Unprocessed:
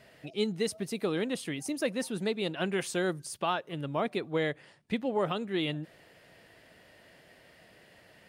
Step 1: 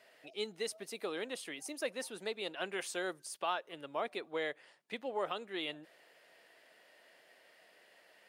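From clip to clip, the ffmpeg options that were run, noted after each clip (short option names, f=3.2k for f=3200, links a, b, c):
-af "highpass=460,volume=-4.5dB"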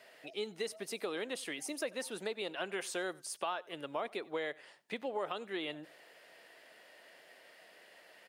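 -filter_complex "[0:a]acrossover=split=1900[a][b];[b]alimiter=level_in=12dB:limit=-24dB:level=0:latency=1:release=33,volume=-12dB[c];[a][c]amix=inputs=2:normalize=0,acompressor=threshold=-40dB:ratio=2.5,asplit=2[d][e];[e]adelay=93.29,volume=-23dB,highshelf=f=4k:g=-2.1[f];[d][f]amix=inputs=2:normalize=0,volume=4.5dB"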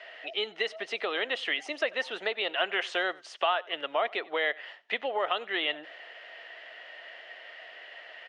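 -af "highpass=430,equalizer=f=690:t=q:w=4:g=6,equalizer=f=1.3k:t=q:w=4:g=4,equalizer=f=1.9k:t=q:w=4:g=8,equalizer=f=3k:t=q:w=4:g=9,equalizer=f=4.8k:t=q:w=4:g=-5,lowpass=f=5k:w=0.5412,lowpass=f=5k:w=1.3066,volume=6.5dB"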